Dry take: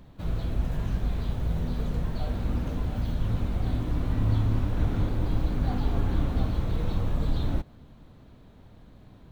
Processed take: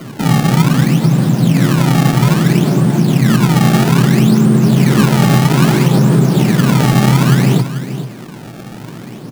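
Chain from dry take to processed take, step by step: in parallel at +1 dB: compression, threshold -37 dBFS, peak gain reduction 17 dB; on the sum: frequency shift +110 Hz; decimation with a swept rate 25×, swing 160% 0.61 Hz; delay 437 ms -12.5 dB; loudness maximiser +15 dB; trim -1 dB

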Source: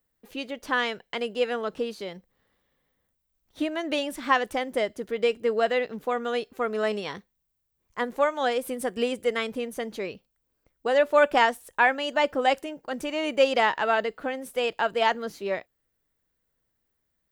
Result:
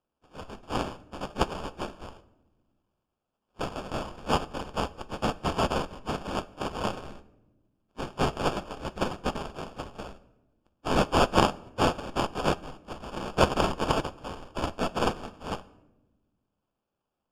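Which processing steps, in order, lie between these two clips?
spectral contrast reduction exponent 0.13; high-pass 740 Hz 12 dB/octave; in parallel at -10 dB: Schmitt trigger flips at -26 dBFS; on the sum: sample-rate reducer 2 kHz, jitter 0%; distance through air 64 m; on a send at -12 dB: reverberation RT60 1.1 s, pre-delay 4 ms; on the sum: upward expansion 1.5:1, over -31 dBFS

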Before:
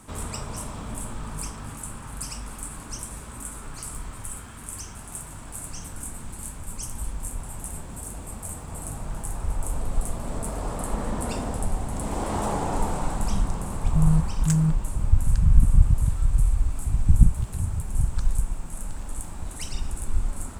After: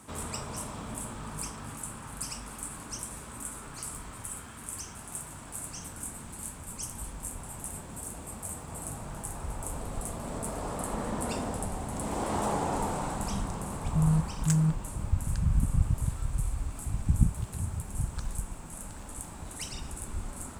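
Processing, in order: high-pass 110 Hz 6 dB/octave; trim -2 dB

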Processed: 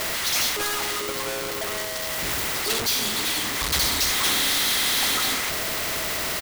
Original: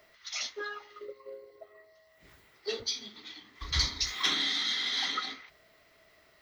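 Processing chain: power-law waveshaper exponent 0.35; harmony voices -4 st -16 dB; spectrum-flattening compressor 2:1

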